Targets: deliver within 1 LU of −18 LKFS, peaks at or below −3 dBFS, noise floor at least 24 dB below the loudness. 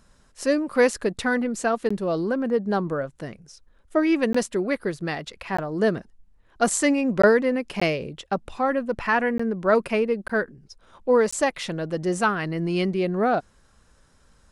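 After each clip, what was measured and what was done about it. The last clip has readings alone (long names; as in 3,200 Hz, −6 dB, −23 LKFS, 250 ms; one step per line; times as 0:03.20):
number of dropouts 8; longest dropout 15 ms; integrated loudness −24.0 LKFS; sample peak −5.0 dBFS; target loudness −18.0 LKFS
→ repair the gap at 0:01.89/0:04.33/0:05.57/0:07.22/0:07.80/0:09.38/0:10.28/0:11.31, 15 ms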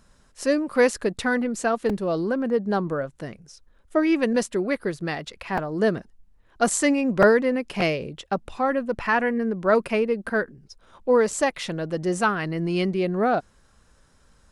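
number of dropouts 0; integrated loudness −24.0 LKFS; sample peak −5.0 dBFS; target loudness −18.0 LKFS
→ level +6 dB
brickwall limiter −3 dBFS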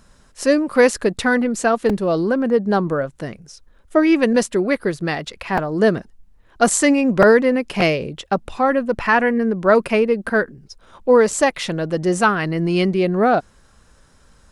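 integrated loudness −18.0 LKFS; sample peak −3.0 dBFS; background noise floor −53 dBFS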